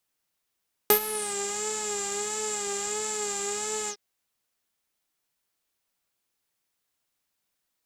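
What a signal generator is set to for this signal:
subtractive patch with vibrato G#4, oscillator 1 saw, sub −20 dB, noise −7 dB, filter lowpass, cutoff 4,900 Hz, Q 11, filter envelope 1.5 octaves, filter decay 0.47 s, attack 2.3 ms, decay 0.09 s, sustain −14.5 dB, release 0.07 s, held 2.99 s, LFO 1.5 Hz, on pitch 60 cents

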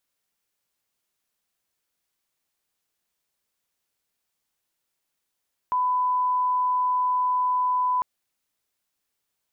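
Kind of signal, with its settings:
line-up tone −20 dBFS 2.30 s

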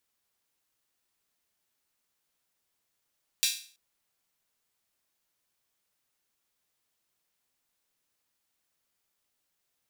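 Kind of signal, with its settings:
open synth hi-hat length 0.33 s, high-pass 3,300 Hz, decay 0.43 s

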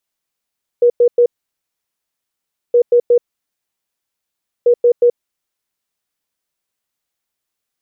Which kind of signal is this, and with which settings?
beeps in groups sine 481 Hz, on 0.08 s, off 0.10 s, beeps 3, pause 1.48 s, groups 3, −6.5 dBFS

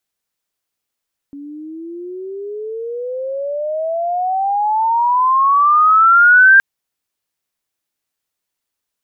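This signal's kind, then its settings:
glide logarithmic 280 Hz → 1,600 Hz −29 dBFS → −4 dBFS 5.27 s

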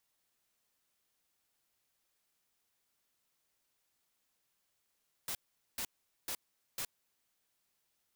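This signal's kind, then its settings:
noise bursts white, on 0.07 s, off 0.43 s, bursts 4, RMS −38.5 dBFS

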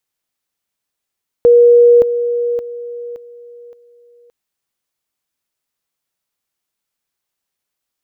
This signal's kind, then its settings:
level staircase 478 Hz −4 dBFS, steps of −10 dB, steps 5, 0.57 s 0.00 s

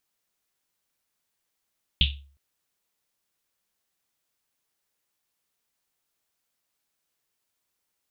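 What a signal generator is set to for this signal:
drum after Risset length 0.36 s, pitch 70 Hz, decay 0.48 s, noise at 3,200 Hz, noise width 1,200 Hz, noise 45%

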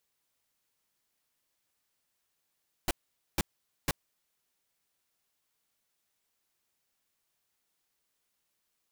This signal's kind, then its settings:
noise bursts pink, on 0.03 s, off 0.47 s, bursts 3, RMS −27.5 dBFS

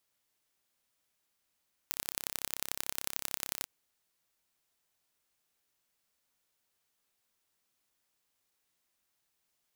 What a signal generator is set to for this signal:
impulse train 33.5 per second, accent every 3, −5 dBFS 1.74 s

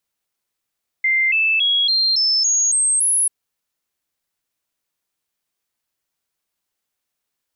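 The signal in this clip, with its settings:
stepped sweep 2,090 Hz up, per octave 3, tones 8, 0.28 s, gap 0.00 s −14 dBFS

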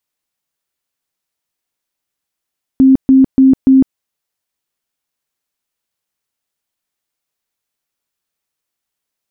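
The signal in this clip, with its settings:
tone bursts 265 Hz, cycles 41, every 0.29 s, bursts 4, −3.5 dBFS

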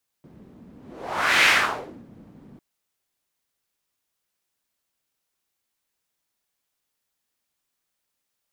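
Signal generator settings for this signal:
pass-by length 2.35 s, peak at 0:01.22, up 0.76 s, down 0.62 s, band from 210 Hz, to 2,200 Hz, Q 2, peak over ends 31 dB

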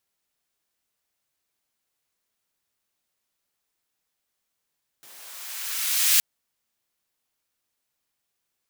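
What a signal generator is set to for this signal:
filter sweep on noise white, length 1.17 s highpass, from 120 Hz, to 2,300 Hz, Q 0.77, linear, gain ramp +32.5 dB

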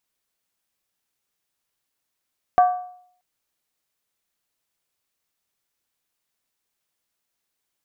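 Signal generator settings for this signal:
struck skin, lowest mode 725 Hz, decay 0.62 s, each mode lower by 10.5 dB, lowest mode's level −9 dB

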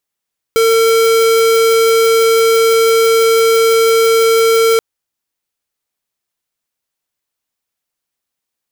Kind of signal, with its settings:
tone square 453 Hz −10 dBFS 4.23 s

